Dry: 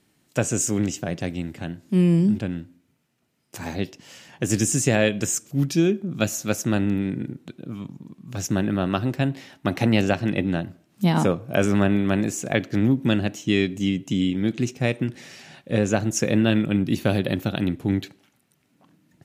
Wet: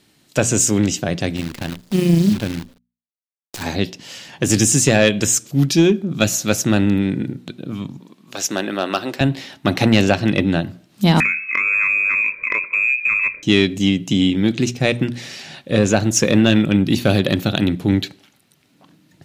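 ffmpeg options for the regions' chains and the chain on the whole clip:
ffmpeg -i in.wav -filter_complex "[0:a]asettb=1/sr,asplit=3[link_01][link_02][link_03];[link_01]atrim=end=1.364[link_04];[link_02]atrim=start=1.36:end=3.63,asetpts=PTS-STARTPTS,afade=type=in:duration=0.004:curve=qsin,afade=type=out:start_time=2.266:duration=0.004:curve=qsin,agate=range=-33dB:threshold=-53dB:ratio=3:release=100:detection=peak,tremolo=f=27:d=0.462,acrusher=bits=7:dc=4:mix=0:aa=0.000001[link_05];[link_03]atrim=start=3.626[link_06];[link_04][link_05]acrossfade=duration=0.004:curve1=hsin:curve2=qsin[link_07];[link_07][link_06]acrossfade=duration=0.004:curve1=qsin:curve2=hsin,asettb=1/sr,asplit=3[link_08][link_09][link_10];[link_08]atrim=end=7.984[link_11];[link_09]atrim=start=7.98:end=9.21,asetpts=PTS-STARTPTS,afade=type=in:duration=0.004:curve=qsin,afade=type=out:start_time=1.226:duration=0.004:curve=qsin,highpass=400,asoftclip=type=hard:threshold=-15.5dB[link_12];[link_10]atrim=start=9.206[link_13];[link_11][link_12]acrossfade=duration=0.004:curve1=hsin:curve2=qsin[link_14];[link_14][link_13]acrossfade=duration=0.004:curve1=qsin:curve2=hsin,asettb=1/sr,asplit=3[link_15][link_16][link_17];[link_15]atrim=end=11.204[link_18];[link_16]atrim=start=11.2:end=13.43,asetpts=PTS-STARTPTS,afade=type=in:duration=0.004:curve=qsin,afade=type=out:start_time=2.226:duration=0.004:curve=qsin,lowpass=frequency=2300:width_type=q:width=0.5098,lowpass=frequency=2300:width_type=q:width=0.6013,lowpass=frequency=2300:width_type=q:width=0.9,lowpass=frequency=2300:width_type=q:width=2.563,afreqshift=-2700,acompressor=threshold=-23dB:ratio=5:attack=3.2:release=140:knee=1:detection=peak,asuperstop=centerf=790:order=8:qfactor=2.2[link_19];[link_17]atrim=start=13.426[link_20];[link_18][link_19]acrossfade=duration=0.004:curve1=hsin:curve2=qsin[link_21];[link_21][link_20]acrossfade=duration=0.004:curve1=qsin:curve2=hsin,equalizer=frequency=4000:width_type=o:width=0.93:gain=6.5,bandreject=frequency=60:width_type=h:width=6,bandreject=frequency=120:width_type=h:width=6,bandreject=frequency=180:width_type=h:width=6,bandreject=frequency=240:width_type=h:width=6,acontrast=80" out.wav

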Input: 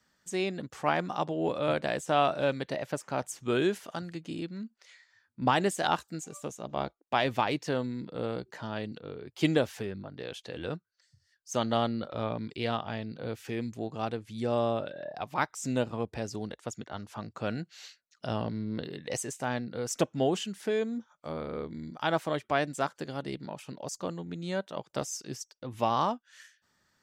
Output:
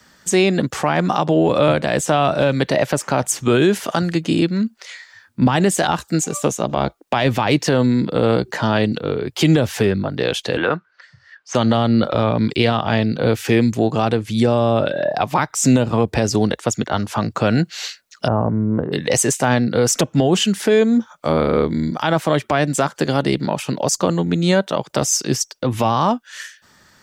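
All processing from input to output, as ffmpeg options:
ffmpeg -i in.wav -filter_complex "[0:a]asettb=1/sr,asplit=3[link_01][link_02][link_03];[link_01]atrim=end=10.574[link_04];[link_02]atrim=start=10.57:end=11.55,asetpts=PTS-STARTPTS,afade=type=in:duration=0.004:curve=qsin,afade=type=out:start_time=0.976:duration=0.004:curve=qsin,highpass=160,lowpass=3100,acompressor=threshold=-42dB:ratio=2:attack=3.2:release=140:knee=1:detection=peak,equalizer=frequency=1300:width_type=o:width=2:gain=11.5[link_05];[link_03]atrim=start=11.546[link_06];[link_04][link_05]acrossfade=duration=0.004:curve1=hsin:curve2=qsin[link_07];[link_07][link_06]acrossfade=duration=0.004:curve1=qsin:curve2=hsin,asettb=1/sr,asplit=3[link_08][link_09][link_10];[link_08]atrim=end=18.284[link_11];[link_09]atrim=start=18.28:end=18.92,asetpts=PTS-STARTPTS,afade=type=in:duration=0.004:curve=qsin,afade=type=out:start_time=0.636:duration=0.004:curve=qsin,lowpass=frequency=1200:width=0.5412,lowpass=frequency=1200:width=1.3066,equalizer=frequency=260:width=0.45:gain=-5[link_12];[link_10]atrim=start=18.916[link_13];[link_11][link_12]acrossfade=duration=0.004:curve1=hsin:curve2=qsin[link_14];[link_14][link_13]acrossfade=duration=0.004:curve1=qsin:curve2=hsin,acrossover=split=190[link_15][link_16];[link_16]acompressor=threshold=-30dB:ratio=6[link_17];[link_15][link_17]amix=inputs=2:normalize=0,alimiter=level_in=24.5dB:limit=-1dB:release=50:level=0:latency=1,volume=-4.5dB" out.wav

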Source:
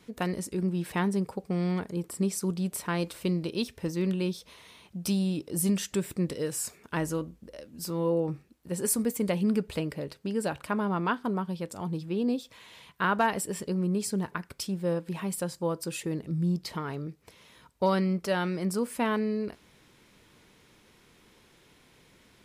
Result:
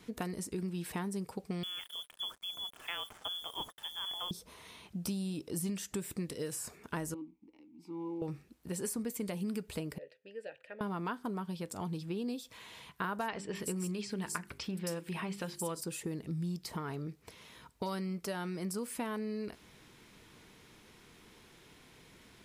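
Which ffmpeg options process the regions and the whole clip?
ffmpeg -i in.wav -filter_complex "[0:a]asettb=1/sr,asplit=3[link_01][link_02][link_03];[link_01]atrim=end=1.634[link_04];[link_02]atrim=start=1.63:end=4.31,asetpts=PTS-STARTPTS,afade=type=in:duration=0.004:curve=qsin,afade=type=out:start_time=2.676:duration=0.004:curve=qsin,lowpass=frequency=3100:width_type=q:width=0.5098,lowpass=frequency=3100:width_type=q:width=0.6013,lowpass=frequency=3100:width_type=q:width=0.9,lowpass=frequency=3100:width_type=q:width=2.563,afreqshift=-3600,acrusher=bits=7:mix=0:aa=0.5[link_05];[link_03]atrim=start=4.306[link_06];[link_04][link_05]acrossfade=duration=0.004:curve1=hsin:curve2=qsin[link_07];[link_07][link_06]acrossfade=duration=0.004:curve1=qsin:curve2=hsin,asettb=1/sr,asplit=3[link_08][link_09][link_10];[link_08]atrim=end=7.144[link_11];[link_09]atrim=start=7.14:end=8.22,asetpts=PTS-STARTPTS,afade=type=in:duration=0.004:curve=qsin,afade=type=out:start_time=1.076:duration=0.004:curve=qsin,acrusher=bits=7:mode=log:mix=0:aa=0.000001,asplit=3[link_12][link_13][link_14];[link_12]bandpass=frequency=300:width_type=q:width=8,volume=0dB[link_15];[link_13]bandpass=frequency=870:width_type=q:width=8,volume=-6dB[link_16];[link_14]bandpass=frequency=2240:width_type=q:width=8,volume=-9dB[link_17];[link_15][link_16][link_17]amix=inputs=3:normalize=0[link_18];[link_10]atrim=start=8.216[link_19];[link_11][link_18]acrossfade=duration=0.004:curve1=hsin:curve2=qsin[link_20];[link_20][link_19]acrossfade=duration=0.004:curve1=qsin:curve2=hsin,asettb=1/sr,asplit=3[link_21][link_22][link_23];[link_21]atrim=end=9.984[link_24];[link_22]atrim=start=9.98:end=10.81,asetpts=PTS-STARTPTS,afade=type=in:duration=0.004:curve=qsin,afade=type=out:start_time=0.826:duration=0.004:curve=qsin,asplit=3[link_25][link_26][link_27];[link_25]bandpass=frequency=530:width_type=q:width=8,volume=0dB[link_28];[link_26]bandpass=frequency=1840:width_type=q:width=8,volume=-6dB[link_29];[link_27]bandpass=frequency=2480:width_type=q:width=8,volume=-9dB[link_30];[link_28][link_29][link_30]amix=inputs=3:normalize=0,equalizer=frequency=270:width=0.6:gain=-6.5[link_31];[link_23]atrim=start=10.806[link_32];[link_24][link_31]acrossfade=duration=0.004:curve1=hsin:curve2=qsin[link_33];[link_33][link_32]acrossfade=duration=0.004:curve1=qsin:curve2=hsin,asettb=1/sr,asplit=3[link_34][link_35][link_36];[link_34]atrim=end=13.284[link_37];[link_35]atrim=start=13.28:end=15.81,asetpts=PTS-STARTPTS,afade=type=in:duration=0.004:curve=qsin,afade=type=out:start_time=2.526:duration=0.004:curve=qsin,equalizer=frequency=2600:width_type=o:width=1.8:gain=11,bandreject=frequency=50:width_type=h:width=6,bandreject=frequency=100:width_type=h:width=6,bandreject=frequency=150:width_type=h:width=6,bandreject=frequency=200:width_type=h:width=6,bandreject=frequency=250:width_type=h:width=6,bandreject=frequency=300:width_type=h:width=6,bandreject=frequency=350:width_type=h:width=6,bandreject=frequency=400:width_type=h:width=6,acrossover=split=5200[link_38][link_39];[link_39]adelay=270[link_40];[link_38][link_40]amix=inputs=2:normalize=0,atrim=end_sample=111573[link_41];[link_36]atrim=start=15.806[link_42];[link_37][link_41]acrossfade=duration=0.004:curve1=hsin:curve2=qsin[link_43];[link_43][link_42]acrossfade=duration=0.004:curve1=qsin:curve2=hsin,acrossover=split=1700|6100[link_44][link_45][link_46];[link_44]acompressor=threshold=-37dB:ratio=4[link_47];[link_45]acompressor=threshold=-53dB:ratio=4[link_48];[link_46]acompressor=threshold=-43dB:ratio=4[link_49];[link_47][link_48][link_49]amix=inputs=3:normalize=0,bandreject=frequency=550:width=12,volume=1dB" out.wav

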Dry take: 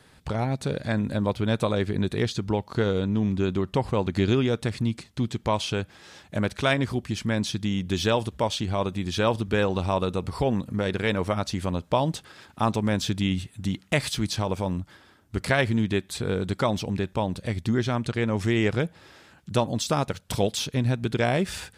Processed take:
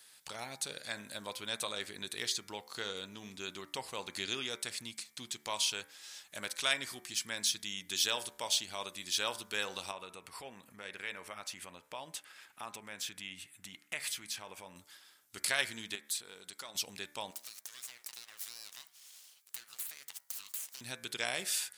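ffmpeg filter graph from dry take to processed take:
ffmpeg -i in.wav -filter_complex "[0:a]asettb=1/sr,asplit=3[link_01][link_02][link_03];[link_01]atrim=end=9.914[link_04];[link_02]atrim=start=9.91:end=14.76,asetpts=PTS-STARTPTS,afade=type=in:duration=0.004:curve=qsin,afade=type=out:start_time=4.846:duration=0.004:curve=qsin,acompressor=threshold=-29dB:ratio=2:attack=3.2:release=140:knee=1:detection=peak,highshelf=frequency=3100:width_type=q:width=1.5:gain=-7[link_05];[link_03]atrim=start=14.756[link_06];[link_04][link_05]acrossfade=duration=0.004:curve1=hsin:curve2=qsin[link_07];[link_07][link_06]acrossfade=duration=0.004:curve1=qsin:curve2=hsin,asettb=1/sr,asplit=3[link_08][link_09][link_10];[link_08]atrim=end=15.954[link_11];[link_09]atrim=start=15.95:end=16.75,asetpts=PTS-STARTPTS,afade=type=in:duration=0.004:curve=qsin,afade=type=out:start_time=0.796:duration=0.004:curve=qsin,lowshelf=frequency=110:gain=-10,acompressor=threshold=-37dB:ratio=2:attack=3.2:release=140:knee=1:detection=peak,aeval=exprs='(tanh(8.91*val(0)+0.3)-tanh(0.3))/8.91':channel_layout=same[link_12];[link_10]atrim=start=16.746[link_13];[link_11][link_12]acrossfade=duration=0.004:curve1=hsin:curve2=qsin[link_14];[link_14][link_13]acrossfade=duration=0.004:curve1=qsin:curve2=hsin,asettb=1/sr,asplit=3[link_15][link_16][link_17];[link_15]atrim=end=17.314[link_18];[link_16]atrim=start=17.31:end=20.81,asetpts=PTS-STARTPTS,afade=type=in:duration=0.004:curve=qsin,afade=type=out:start_time=3.496:duration=0.004:curve=qsin,highpass=990,aeval=exprs='abs(val(0))':channel_layout=same,acompressor=threshold=-37dB:ratio=12:attack=3.2:release=140:knee=1:detection=peak[link_19];[link_17]atrim=start=20.806[link_20];[link_18][link_19]acrossfade=duration=0.004:curve1=hsin:curve2=qsin[link_21];[link_21][link_20]acrossfade=duration=0.004:curve1=qsin:curve2=hsin,aderivative,bandreject=frequency=73.15:width_type=h:width=4,bandreject=frequency=146.3:width_type=h:width=4,bandreject=frequency=219.45:width_type=h:width=4,bandreject=frequency=292.6:width_type=h:width=4,bandreject=frequency=365.75:width_type=h:width=4,bandreject=frequency=438.9:width_type=h:width=4,bandreject=frequency=512.05:width_type=h:width=4,bandreject=frequency=585.2:width_type=h:width=4,bandreject=frequency=658.35:width_type=h:width=4,bandreject=frequency=731.5:width_type=h:width=4,bandreject=frequency=804.65:width_type=h:width=4,bandreject=frequency=877.8:width_type=h:width=4,bandreject=frequency=950.95:width_type=h:width=4,bandreject=frequency=1024.1:width_type=h:width=4,bandreject=frequency=1097.25:width_type=h:width=4,bandreject=frequency=1170.4:width_type=h:width=4,bandreject=frequency=1243.55:width_type=h:width=4,bandreject=frequency=1316.7:width_type=h:width=4,bandreject=frequency=1389.85:width_type=h:width=4,bandreject=frequency=1463:width_type=h:width=4,bandreject=frequency=1536.15:width_type=h:width=4,bandreject=frequency=1609.3:width_type=h:width=4,bandreject=frequency=1682.45:width_type=h:width=4,bandreject=frequency=1755.6:width_type=h:width=4,bandreject=frequency=1828.75:width_type=h:width=4,bandreject=frequency=1901.9:width_type=h:width=4,bandreject=frequency=1975.05:width_type=h:width=4,bandreject=frequency=2048.2:width_type=h:width=4,bandreject=frequency=2121.35:width_type=h:width=4,bandreject=frequency=2194.5:width_type=h:width=4,bandreject=frequency=2267.65:width_type=h:width=4,bandreject=frequency=2340.8:width_type=h:width=4,volume=5dB" out.wav

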